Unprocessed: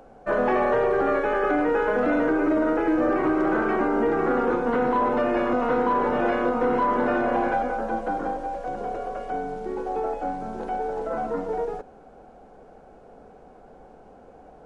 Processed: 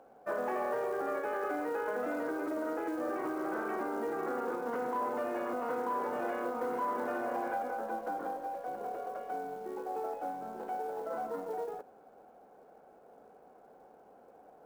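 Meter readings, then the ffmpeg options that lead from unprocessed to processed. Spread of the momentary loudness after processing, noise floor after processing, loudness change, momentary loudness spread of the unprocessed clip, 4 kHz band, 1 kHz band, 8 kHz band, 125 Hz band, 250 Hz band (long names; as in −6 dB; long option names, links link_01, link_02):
6 LU, −59 dBFS, −12.0 dB, 9 LU, below −10 dB, −10.5 dB, can't be measured, −19.0 dB, −15.0 dB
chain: -af "lowpass=frequency=1100:poles=1,acompressor=threshold=-26dB:ratio=2,acrusher=bits=8:mode=log:mix=0:aa=0.000001,highpass=frequency=640:poles=1,volume=-3.5dB"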